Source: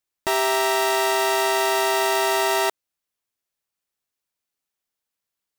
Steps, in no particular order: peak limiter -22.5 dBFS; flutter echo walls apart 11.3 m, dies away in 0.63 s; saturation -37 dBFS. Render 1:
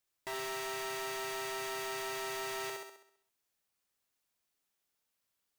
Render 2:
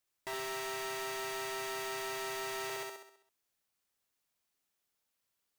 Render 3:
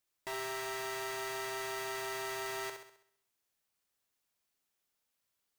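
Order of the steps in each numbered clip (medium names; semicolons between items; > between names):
peak limiter > flutter echo > saturation; flutter echo > peak limiter > saturation; peak limiter > saturation > flutter echo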